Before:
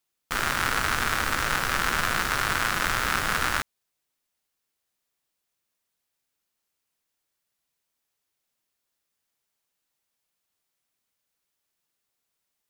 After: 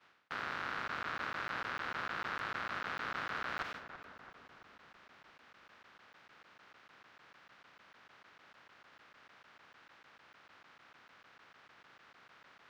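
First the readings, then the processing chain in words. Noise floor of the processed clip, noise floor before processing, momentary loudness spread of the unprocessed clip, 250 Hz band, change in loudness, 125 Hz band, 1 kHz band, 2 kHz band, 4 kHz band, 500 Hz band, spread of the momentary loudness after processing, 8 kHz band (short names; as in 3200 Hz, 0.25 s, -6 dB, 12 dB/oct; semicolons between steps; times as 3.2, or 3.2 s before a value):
-65 dBFS, -81 dBFS, 3 LU, -14.5 dB, -14.5 dB, -19.0 dB, -12.5 dB, -13.5 dB, -17.0 dB, -12.0 dB, 17 LU, -29.5 dB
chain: per-bin compression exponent 0.4; HPF 93 Hz 12 dB/oct; expander -34 dBFS; low shelf 290 Hz -10 dB; reverse; compressor 12:1, threshold -37 dBFS, peak gain reduction 20 dB; reverse; soft clip -33.5 dBFS, distortion -12 dB; air absorption 240 m; darkening echo 0.335 s, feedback 65%, low-pass 1700 Hz, level -10 dB; crackling interface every 0.15 s, samples 512, zero, from 0.88; gain +7 dB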